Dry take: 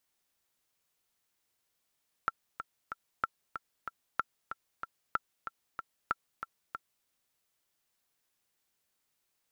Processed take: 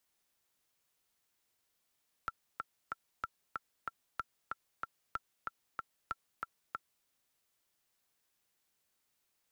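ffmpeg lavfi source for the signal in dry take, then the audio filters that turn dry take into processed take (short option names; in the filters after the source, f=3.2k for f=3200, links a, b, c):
-f lavfi -i "aevalsrc='pow(10,(-15-9.5*gte(mod(t,3*60/188),60/188))/20)*sin(2*PI*1350*mod(t,60/188))*exp(-6.91*mod(t,60/188)/0.03)':d=4.78:s=44100"
-filter_complex "[0:a]acrossover=split=110|3400[a][b][c];[b]alimiter=level_in=0.5dB:limit=-24dB:level=0:latency=1:release=17,volume=-0.5dB[d];[a][d][c]amix=inputs=3:normalize=0"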